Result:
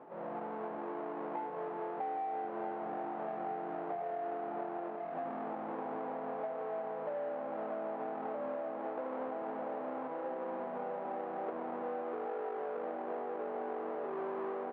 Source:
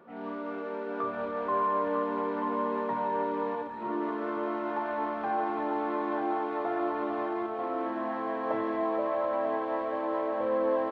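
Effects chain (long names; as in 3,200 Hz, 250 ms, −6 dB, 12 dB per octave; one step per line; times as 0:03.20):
each half-wave held at its own peak
reversed playback
upward compression, threshold −35 dBFS
reversed playback
spectral tilt −3.5 dB per octave
wrong playback speed 45 rpm record played at 33 rpm
four-pole ladder band-pass 870 Hz, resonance 30%
high-frequency loss of the air 240 metres
single-tap delay 1,073 ms −15 dB
downward compressor 5 to 1, threshold −49 dBFS, peak gain reduction 14 dB
level +12 dB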